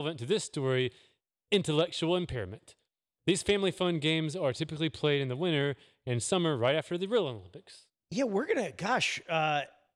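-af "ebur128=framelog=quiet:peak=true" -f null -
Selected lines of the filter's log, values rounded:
Integrated loudness:
  I:         -30.6 LUFS
  Threshold: -41.2 LUFS
Loudness range:
  LRA:         1.5 LU
  Threshold: -51.2 LUFS
  LRA low:   -32.0 LUFS
  LRA high:  -30.5 LUFS
True peak:
  Peak:      -16.3 dBFS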